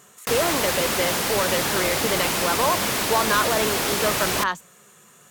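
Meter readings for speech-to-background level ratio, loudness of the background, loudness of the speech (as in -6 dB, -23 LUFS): -3.5 dB, -22.5 LUFS, -26.0 LUFS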